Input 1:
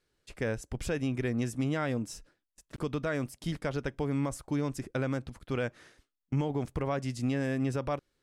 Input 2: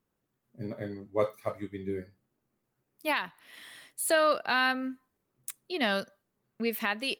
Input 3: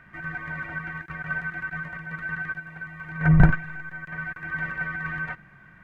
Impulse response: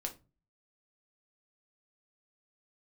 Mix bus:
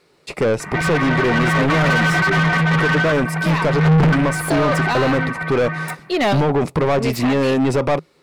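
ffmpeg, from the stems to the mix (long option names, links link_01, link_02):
-filter_complex "[0:a]volume=-9dB,asplit=2[link_01][link_02];[1:a]adelay=400,volume=-8.5dB[link_03];[2:a]asoftclip=type=hard:threshold=-10.5dB,adelay=600,volume=-1dB,afade=type=in:start_time=1.24:duration=0.48:silence=0.398107,afade=type=out:start_time=2.56:duration=0.67:silence=0.334965,afade=type=out:start_time=4.81:duration=0.53:silence=0.251189[link_04];[link_02]apad=whole_len=335095[link_05];[link_03][link_05]sidechaincompress=threshold=-49dB:ratio=4:attack=7.8:release=779[link_06];[link_01][link_06][link_04]amix=inputs=3:normalize=0,equalizer=frequency=160:width_type=o:width=0.33:gain=10,equalizer=frequency=400:width_type=o:width=0.33:gain=3,equalizer=frequency=1600:width_type=o:width=0.33:gain=-12,equalizer=frequency=3150:width_type=o:width=0.33:gain=-7,equalizer=frequency=6300:width_type=o:width=0.33:gain=-4,acontrast=83,asplit=2[link_07][link_08];[link_08]highpass=frequency=720:poles=1,volume=36dB,asoftclip=type=tanh:threshold=-7.5dB[link_09];[link_07][link_09]amix=inputs=2:normalize=0,lowpass=frequency=2200:poles=1,volume=-6dB"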